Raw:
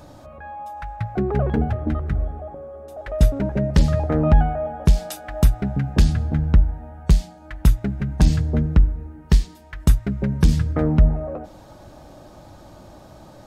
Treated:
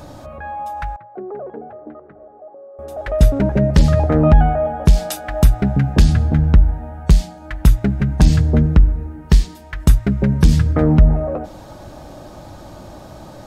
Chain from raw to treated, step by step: in parallel at +2 dB: limiter -13.5 dBFS, peak gain reduction 8 dB; 0.96–2.79 on the sum: ladder band-pass 600 Hz, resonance 25%

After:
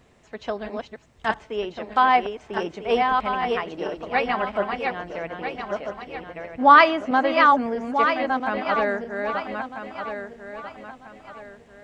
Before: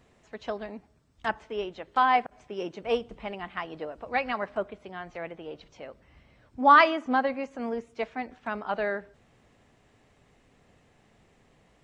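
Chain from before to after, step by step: regenerating reverse delay 0.646 s, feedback 57%, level -4 dB; gain +4.5 dB

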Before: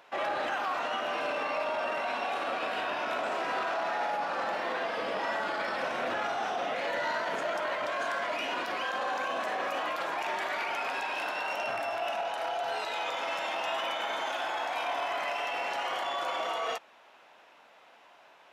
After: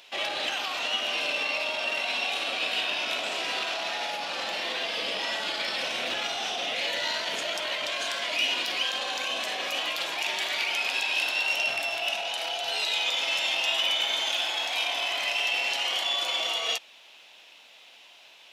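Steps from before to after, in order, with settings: resonant high shelf 2100 Hz +13.5 dB, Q 1.5; gain -2 dB

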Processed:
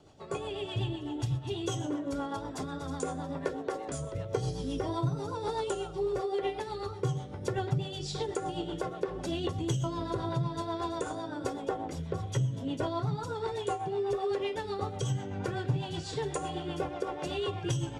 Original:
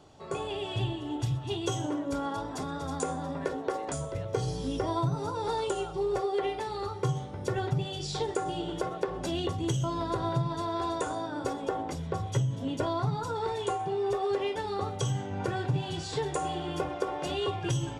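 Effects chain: rotary speaker horn 8 Hz

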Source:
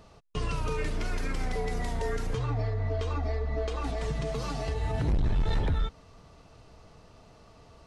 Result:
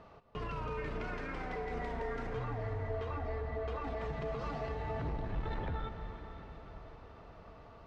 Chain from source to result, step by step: LPF 1700 Hz 12 dB/oct; tilt +2 dB/oct; limiter -33.5 dBFS, peak gain reduction 9.5 dB; echo with dull and thin repeats by turns 0.255 s, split 900 Hz, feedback 60%, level -12.5 dB; on a send at -7 dB: reverb RT60 5.8 s, pre-delay 0.107 s; on the sum: gain +2 dB

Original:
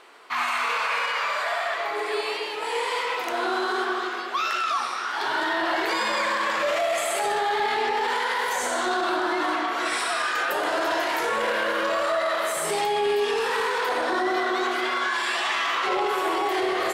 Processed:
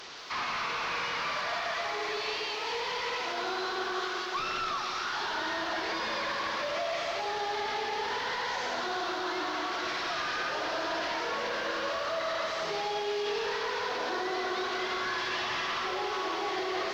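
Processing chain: delta modulation 32 kbps, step -35.5 dBFS; bell 4700 Hz +7.5 dB 1.5 oct; limiter -19 dBFS, peak gain reduction 6 dB; low shelf 91 Hz -7 dB; lo-fi delay 0.172 s, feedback 80%, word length 9-bit, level -11 dB; gain -6 dB

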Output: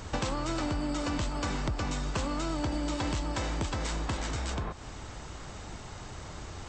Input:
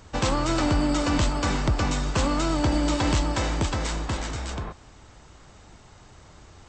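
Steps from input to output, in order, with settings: compressor 5:1, threshold -38 dBFS, peak gain reduction 17 dB; gain +7 dB

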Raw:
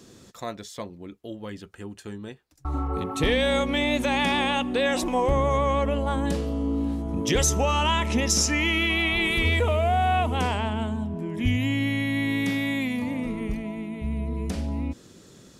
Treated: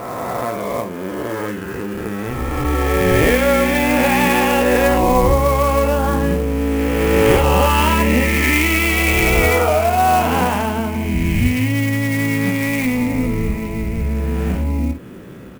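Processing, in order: spectral swells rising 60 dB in 2.50 s; on a send: early reflections 16 ms -6.5 dB, 54 ms -8.5 dB; on the sum: vibrato 4.1 Hz 14 cents; steep low-pass 2800 Hz 36 dB/oct; in parallel at +3 dB: compressor, threshold -30 dBFS, peak gain reduction 16.5 dB; on the sum: clock jitter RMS 0.03 ms; gain +2 dB

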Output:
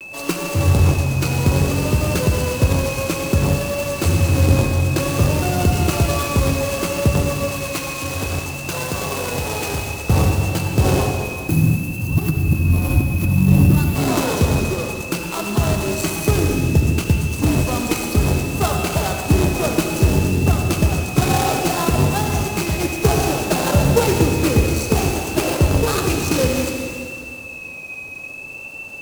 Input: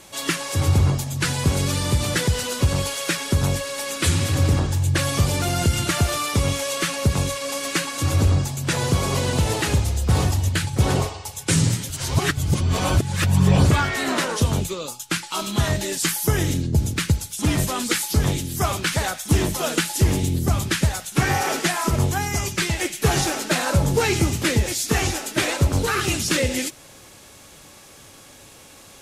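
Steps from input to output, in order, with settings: median filter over 25 samples; 7.49–10.09 low shelf 490 Hz -11 dB; 11.16–13.96 spectral gain 360–10000 Hz -11 dB; tone controls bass -3 dB, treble +12 dB; whine 2600 Hz -38 dBFS; vibrato 0.6 Hz 49 cents; reverb RT60 2.3 s, pre-delay 63 ms, DRR 3 dB; gain +5.5 dB

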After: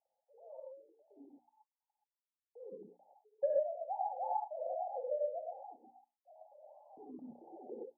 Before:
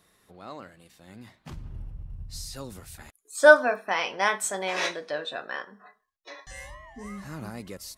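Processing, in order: sine-wave speech; Chebyshev low-pass 870 Hz, order 8; notches 60/120/180/240/300/360 Hz; compressor 5:1, threshold -33 dBFS, peak gain reduction 20 dB; non-linear reverb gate 0.15 s rising, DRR -3.5 dB; gain -2 dB

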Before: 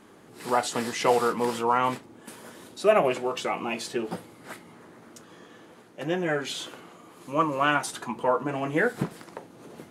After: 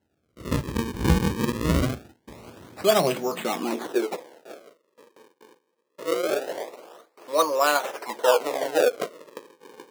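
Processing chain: gate with hold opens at -39 dBFS; decimation with a swept rate 37×, swing 160% 0.23 Hz; high-pass sweep 66 Hz -> 500 Hz, 2.37–4.27

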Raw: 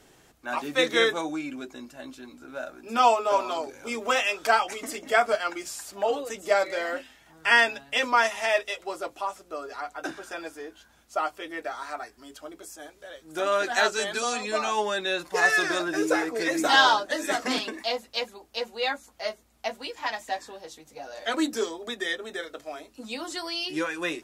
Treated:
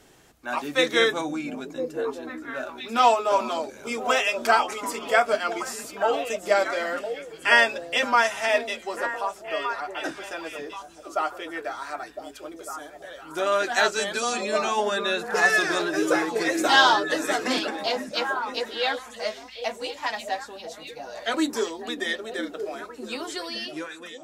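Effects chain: ending faded out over 1.01 s; delay with a stepping band-pass 0.505 s, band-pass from 170 Hz, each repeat 1.4 oct, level -2.5 dB; gain +1.5 dB

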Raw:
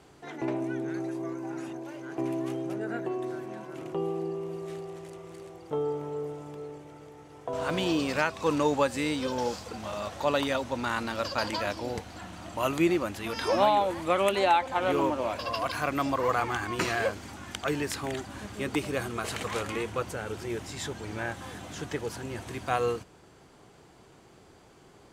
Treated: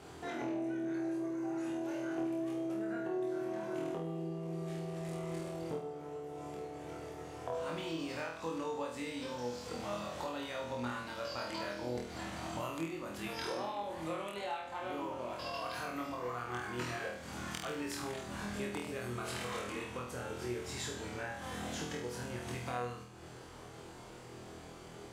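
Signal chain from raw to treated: compressor 8:1, threshold -42 dBFS, peak gain reduction 23 dB; flutter echo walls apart 4.2 m, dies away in 0.61 s; gain +1.5 dB

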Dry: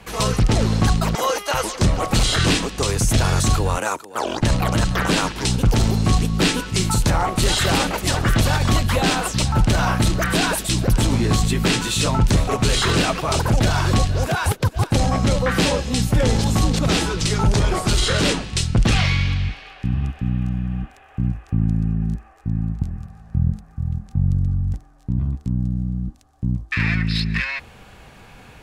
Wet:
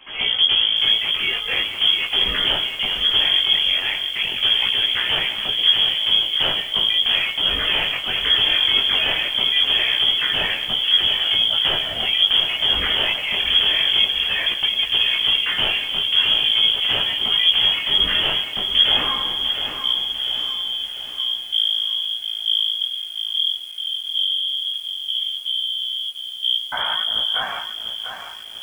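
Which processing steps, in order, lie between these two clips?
chorus 0.41 Hz, delay 15.5 ms, depth 6.6 ms; inverted band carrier 3300 Hz; lo-fi delay 0.697 s, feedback 55%, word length 7-bit, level -7.5 dB

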